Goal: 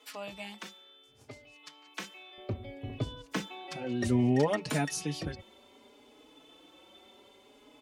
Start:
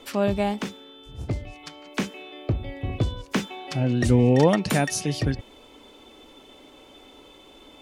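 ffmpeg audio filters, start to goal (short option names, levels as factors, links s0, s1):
-filter_complex "[0:a]asetnsamples=n=441:p=0,asendcmd='2.38 highpass f 140',highpass=f=1100:p=1,asplit=2[s0][s1];[s1]adelay=4.3,afreqshift=0.64[s2];[s0][s2]amix=inputs=2:normalize=1,volume=0.596"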